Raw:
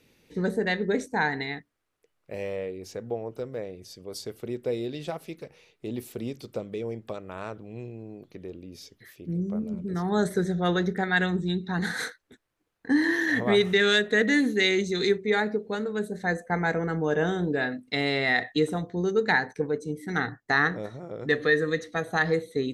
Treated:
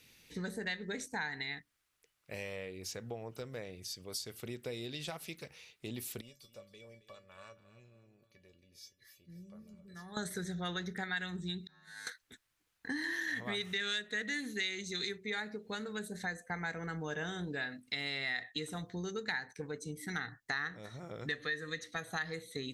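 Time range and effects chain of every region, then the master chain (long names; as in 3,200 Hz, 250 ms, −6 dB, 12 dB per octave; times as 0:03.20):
0:06.21–0:10.17: notch filter 290 Hz, Q 7 + tuned comb filter 570 Hz, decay 0.16 s, mix 90% + repeating echo 270 ms, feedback 38%, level −15 dB
0:11.67–0:12.07: compressor whose output falls as the input rises −32 dBFS, ratio −0.5 + tuned comb filter 52 Hz, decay 2 s, harmonics odd, mix 100%
whole clip: guitar amp tone stack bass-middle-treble 5-5-5; downward compressor 3 to 1, threshold −50 dBFS; level +11.5 dB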